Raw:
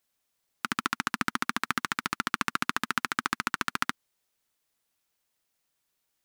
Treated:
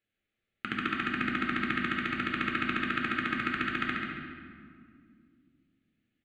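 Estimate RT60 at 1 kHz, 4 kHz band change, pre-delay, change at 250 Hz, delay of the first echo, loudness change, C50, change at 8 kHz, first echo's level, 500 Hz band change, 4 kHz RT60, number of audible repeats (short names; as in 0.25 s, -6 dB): 1.9 s, -3.5 dB, 8 ms, +5.0 dB, 0.138 s, -0.5 dB, 0.0 dB, under -20 dB, -6.5 dB, +4.0 dB, 1.3 s, 1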